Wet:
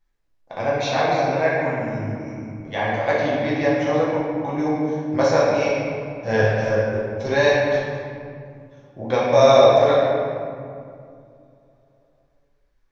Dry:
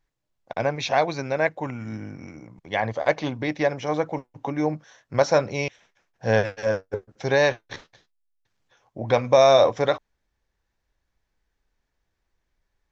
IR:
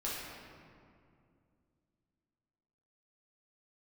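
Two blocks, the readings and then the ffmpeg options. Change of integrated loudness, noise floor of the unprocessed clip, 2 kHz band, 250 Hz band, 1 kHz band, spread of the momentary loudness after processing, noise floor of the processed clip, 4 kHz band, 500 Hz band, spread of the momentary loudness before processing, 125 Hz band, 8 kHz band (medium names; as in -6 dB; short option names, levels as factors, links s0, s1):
+3.5 dB, -78 dBFS, +3.5 dB, +6.0 dB, +4.0 dB, 17 LU, -64 dBFS, +2.0 dB, +4.5 dB, 18 LU, +4.5 dB, no reading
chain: -filter_complex "[1:a]atrim=start_sample=2205[s0];[0:a][s0]afir=irnorm=-1:irlink=0"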